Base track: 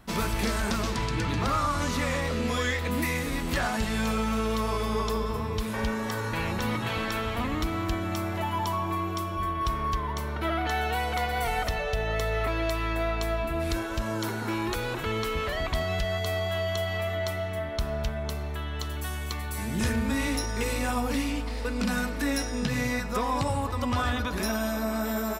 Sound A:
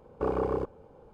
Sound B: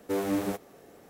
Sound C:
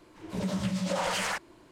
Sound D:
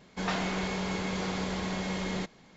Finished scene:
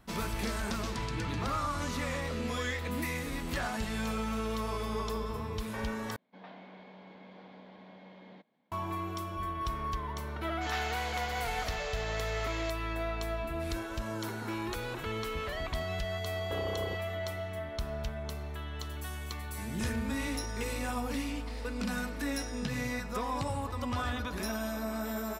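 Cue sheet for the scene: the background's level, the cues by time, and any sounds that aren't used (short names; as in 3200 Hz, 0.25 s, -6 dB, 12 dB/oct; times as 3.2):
base track -6.5 dB
6.16 replace with D -16 dB + speaker cabinet 230–3200 Hz, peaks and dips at 240 Hz +5 dB, 390 Hz -7 dB, 610 Hz +3 dB, 1300 Hz -8 dB, 1900 Hz -4 dB, 2700 Hz -7 dB
10.44 add D -3.5 dB + HPF 1200 Hz
16.3 add A -4 dB + compressor, threshold -30 dBFS
not used: B, C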